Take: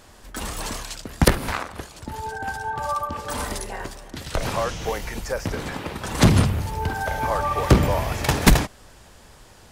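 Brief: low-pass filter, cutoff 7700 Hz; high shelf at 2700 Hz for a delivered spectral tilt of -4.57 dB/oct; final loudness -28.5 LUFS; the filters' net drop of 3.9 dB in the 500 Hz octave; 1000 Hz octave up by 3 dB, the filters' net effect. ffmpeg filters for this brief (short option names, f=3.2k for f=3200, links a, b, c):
-af "lowpass=7.7k,equalizer=f=500:t=o:g=-6.5,equalizer=f=1k:t=o:g=5,highshelf=f=2.7k:g=3,volume=-5dB"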